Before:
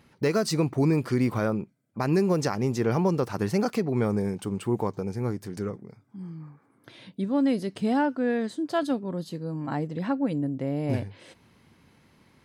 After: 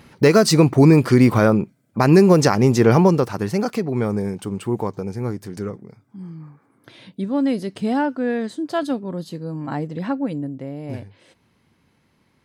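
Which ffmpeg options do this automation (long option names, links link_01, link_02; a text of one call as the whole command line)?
ffmpeg -i in.wav -af "volume=11dB,afade=type=out:start_time=2.95:duration=0.43:silence=0.421697,afade=type=out:start_time=10.1:duration=0.66:silence=0.446684" out.wav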